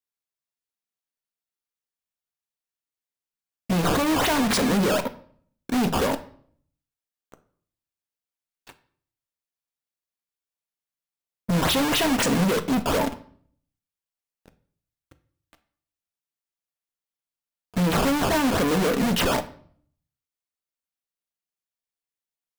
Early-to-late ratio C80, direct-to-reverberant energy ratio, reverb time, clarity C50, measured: 19.5 dB, 10.0 dB, 0.55 s, 15.5 dB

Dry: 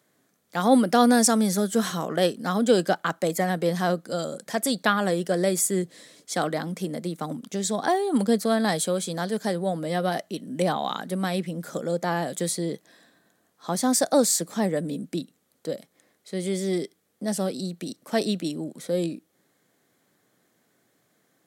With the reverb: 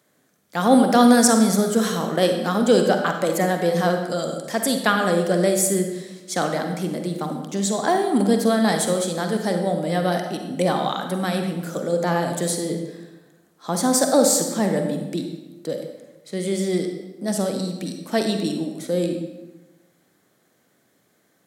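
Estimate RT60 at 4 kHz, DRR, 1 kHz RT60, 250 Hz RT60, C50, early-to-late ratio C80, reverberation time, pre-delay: 0.80 s, 4.5 dB, 1.1 s, 1.2 s, 5.5 dB, 7.5 dB, 1.2 s, 40 ms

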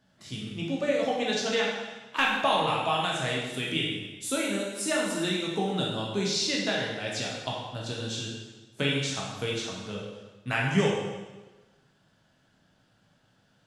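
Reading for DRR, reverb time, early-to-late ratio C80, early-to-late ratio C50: −4.0 dB, 1.2 s, 3.5 dB, 1.0 dB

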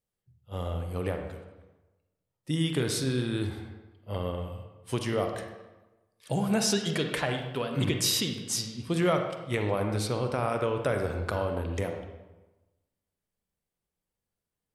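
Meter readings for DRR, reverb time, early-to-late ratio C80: 4.5 dB, 1.1 s, 7.5 dB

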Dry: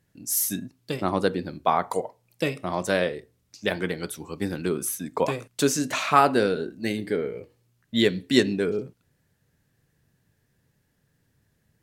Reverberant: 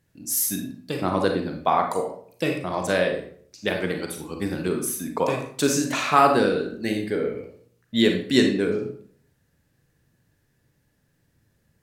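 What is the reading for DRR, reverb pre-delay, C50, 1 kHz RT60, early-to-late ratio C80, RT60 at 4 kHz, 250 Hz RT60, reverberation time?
3.0 dB, 33 ms, 6.0 dB, 0.55 s, 10.0 dB, 0.40 s, 0.60 s, 0.55 s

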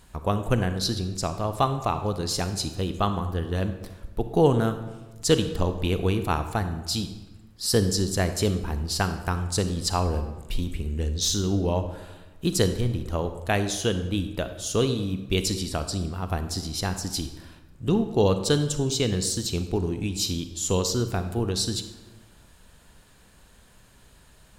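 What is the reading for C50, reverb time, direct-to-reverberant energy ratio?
10.0 dB, 1.2 s, 9.0 dB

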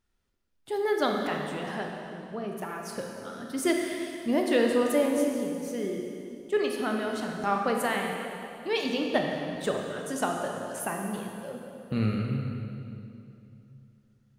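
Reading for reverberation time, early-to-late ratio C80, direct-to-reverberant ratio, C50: 2.8 s, 3.0 dB, 1.0 dB, 2.0 dB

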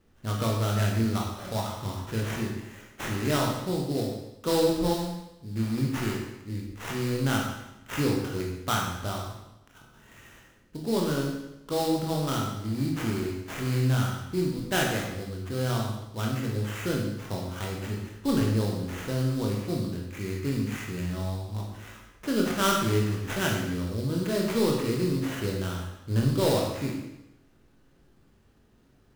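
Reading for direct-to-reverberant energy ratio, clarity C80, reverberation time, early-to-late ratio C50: −1.5 dB, 5.5 dB, 0.90 s, 2.5 dB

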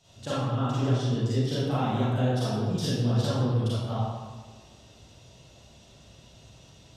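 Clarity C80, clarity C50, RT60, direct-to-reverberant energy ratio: −0.5 dB, −5.5 dB, 1.5 s, −11.0 dB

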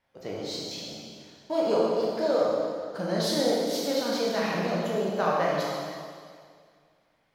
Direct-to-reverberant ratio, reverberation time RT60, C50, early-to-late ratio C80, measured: −5.5 dB, 2.1 s, −2.0 dB, 0.0 dB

